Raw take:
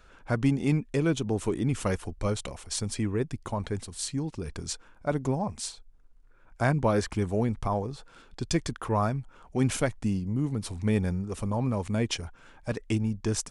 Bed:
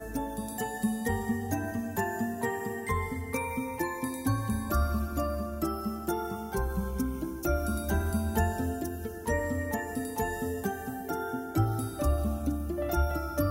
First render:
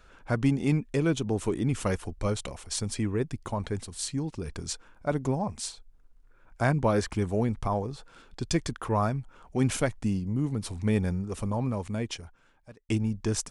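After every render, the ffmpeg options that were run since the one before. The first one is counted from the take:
-filter_complex "[0:a]asplit=2[a][b];[a]atrim=end=12.89,asetpts=PTS-STARTPTS,afade=t=out:st=11.45:d=1.44[c];[b]atrim=start=12.89,asetpts=PTS-STARTPTS,afade=t=in:d=0.004:c=hsin[d];[c][d]concat=n=2:v=0:a=1"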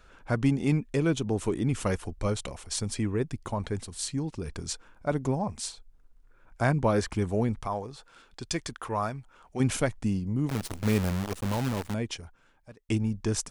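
-filter_complex "[0:a]asettb=1/sr,asplit=3[a][b][c];[a]atrim=end=7.624[d];[b]atrim=start=7.62:end=9.6,asetpts=PTS-STARTPTS,afade=t=in:d=0.004:c=qsin,afade=t=out:st=1.976:d=0.004:c=qsin,lowshelf=f=460:g=-8.5[e];[c]atrim=start=9.596[f];[d][e]acrossfade=d=0.004:c1=hsin:c2=qsin[g];[g][f]acrossfade=d=0.004:c1=qsin:c2=hsin,asettb=1/sr,asplit=3[h][i][j];[h]atrim=end=10.494[k];[i]atrim=start=10.49:end=11.94,asetpts=PTS-STARTPTS,afade=t=in:d=0.004:c=qsin,afade=t=out:st=1.446:d=0.004:c=qsin,acrusher=bits=6:dc=4:mix=0:aa=0.000001[l];[j]atrim=start=11.936[m];[k][l]acrossfade=d=0.004:c1=hsin:c2=qsin[n];[n][m]acrossfade=d=0.004:c1=qsin:c2=hsin"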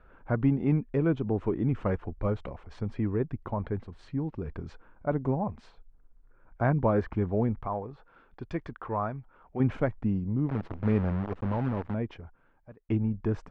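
-af "lowpass=1.8k,aemphasis=mode=reproduction:type=75kf"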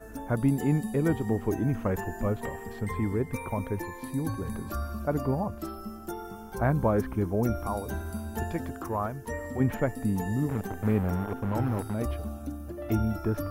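-filter_complex "[1:a]volume=-6dB[a];[0:a][a]amix=inputs=2:normalize=0"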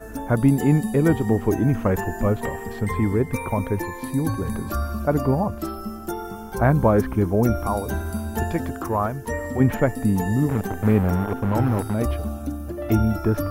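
-af "volume=7.5dB"

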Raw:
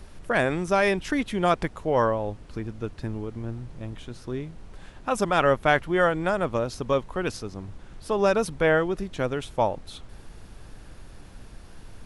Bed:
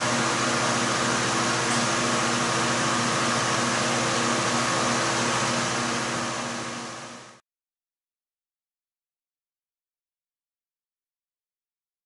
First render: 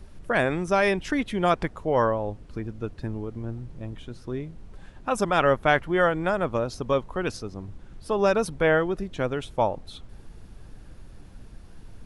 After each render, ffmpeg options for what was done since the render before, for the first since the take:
-af "afftdn=nr=6:nf=-47"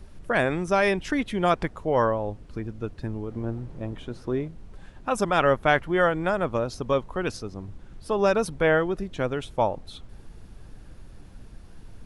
-filter_complex "[0:a]asettb=1/sr,asplit=3[a][b][c];[a]atrim=end=3.304[d];[b]atrim=start=3.3:end=4.48,asetpts=PTS-STARTPTS,afade=t=in:d=0.004:c=qsin,afade=t=out:st=1.176:d=0.004:c=qsin,equalizer=f=630:w=0.36:g=6.5[e];[c]atrim=start=4.476[f];[d][e]acrossfade=d=0.004:c1=hsin:c2=qsin[g];[g][f]acrossfade=d=0.004:c1=qsin:c2=hsin"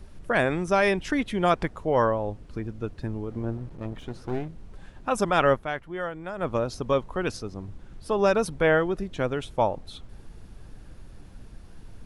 -filter_complex "[0:a]asettb=1/sr,asplit=3[a][b][c];[a]atrim=end=3.574[d];[b]atrim=start=3.57:end=4.49,asetpts=PTS-STARTPTS,afade=t=in:d=0.004:c=qsin,afade=t=out:st=0.916:d=0.004:c=qsin,aeval=exprs='clip(val(0),-1,0.0112)':c=same[e];[c]atrim=start=4.486[f];[d][e]acrossfade=d=0.004:c1=hsin:c2=qsin[g];[g][f]acrossfade=d=0.004:c1=qsin:c2=hsin,asplit=3[h][i][j];[h]atrim=end=5.66,asetpts=PTS-STARTPTS,afade=t=out:st=5.53:d=0.13:silence=0.298538[k];[i]atrim=start=5.66:end=6.35,asetpts=PTS-STARTPTS,volume=-10.5dB[l];[j]atrim=start=6.35,asetpts=PTS-STARTPTS,afade=t=in:d=0.13:silence=0.298538[m];[k][l][m]concat=n=3:v=0:a=1"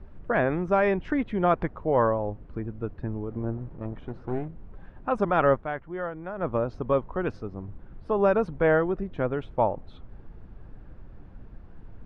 -af "lowpass=1.6k"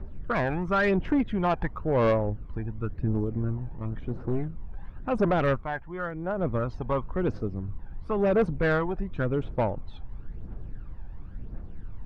-af "aphaser=in_gain=1:out_gain=1:delay=1.3:decay=0.58:speed=0.95:type=triangular,asoftclip=type=tanh:threshold=-17dB"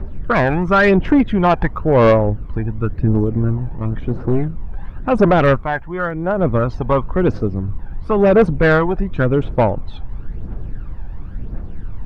-af "volume=11.5dB"

